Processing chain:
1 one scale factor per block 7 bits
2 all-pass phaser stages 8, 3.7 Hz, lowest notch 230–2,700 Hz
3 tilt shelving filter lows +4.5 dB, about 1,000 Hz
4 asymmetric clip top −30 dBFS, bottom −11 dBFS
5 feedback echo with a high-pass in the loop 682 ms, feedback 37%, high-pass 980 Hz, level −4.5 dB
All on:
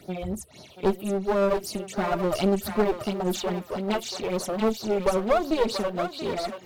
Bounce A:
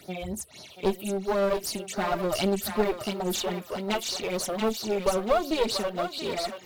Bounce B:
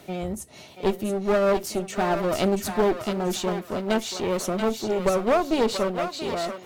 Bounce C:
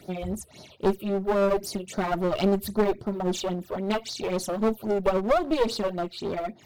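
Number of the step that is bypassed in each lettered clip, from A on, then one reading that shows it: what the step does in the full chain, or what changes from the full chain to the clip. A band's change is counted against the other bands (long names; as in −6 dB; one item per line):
3, 8 kHz band +5.5 dB
2, 8 kHz band +2.0 dB
5, echo-to-direct ratio −6.0 dB to none audible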